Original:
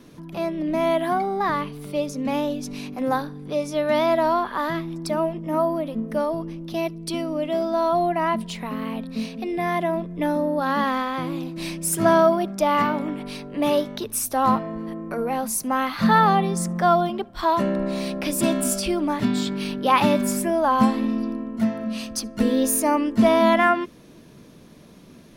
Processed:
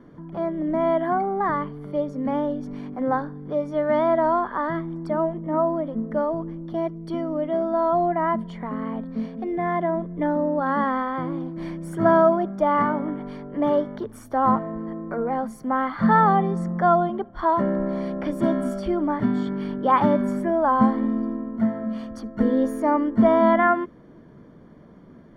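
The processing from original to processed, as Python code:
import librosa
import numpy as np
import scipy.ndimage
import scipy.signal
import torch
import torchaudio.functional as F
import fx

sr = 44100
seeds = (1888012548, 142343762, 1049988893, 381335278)

y = scipy.signal.savgol_filter(x, 41, 4, mode='constant')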